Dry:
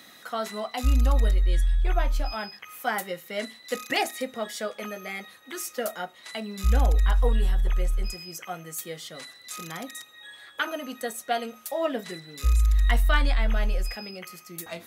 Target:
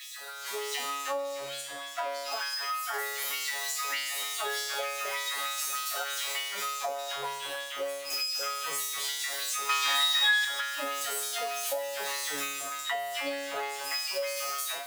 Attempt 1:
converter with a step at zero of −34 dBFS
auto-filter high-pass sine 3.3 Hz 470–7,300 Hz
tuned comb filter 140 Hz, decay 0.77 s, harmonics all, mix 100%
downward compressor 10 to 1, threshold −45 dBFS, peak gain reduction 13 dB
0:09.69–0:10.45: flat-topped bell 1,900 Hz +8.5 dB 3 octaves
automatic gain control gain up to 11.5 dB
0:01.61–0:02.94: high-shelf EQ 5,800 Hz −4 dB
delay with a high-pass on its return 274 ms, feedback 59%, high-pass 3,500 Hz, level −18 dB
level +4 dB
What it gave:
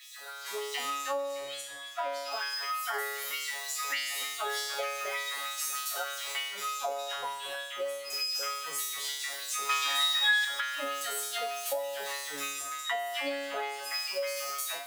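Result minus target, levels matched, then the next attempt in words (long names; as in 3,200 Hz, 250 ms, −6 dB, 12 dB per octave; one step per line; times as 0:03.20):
converter with a step at zero: distortion −8 dB
converter with a step at zero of −24.5 dBFS
auto-filter high-pass sine 3.3 Hz 470–7,300 Hz
tuned comb filter 140 Hz, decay 0.77 s, harmonics all, mix 100%
downward compressor 10 to 1, threshold −45 dBFS, peak gain reduction 14 dB
0:09.69–0:10.45: flat-topped bell 1,900 Hz +8.5 dB 3 octaves
automatic gain control gain up to 11.5 dB
0:01.61–0:02.94: high-shelf EQ 5,800 Hz −4 dB
delay with a high-pass on its return 274 ms, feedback 59%, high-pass 3,500 Hz, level −18 dB
level +4 dB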